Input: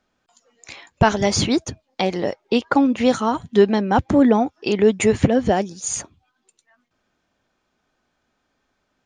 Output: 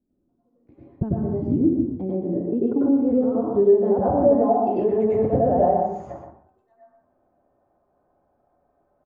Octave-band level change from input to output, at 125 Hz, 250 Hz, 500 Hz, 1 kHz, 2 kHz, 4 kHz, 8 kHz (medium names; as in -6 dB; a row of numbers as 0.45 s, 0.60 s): -3.0 dB, -2.5 dB, 0.0 dB, -2.5 dB, under -20 dB, under -35 dB, under -40 dB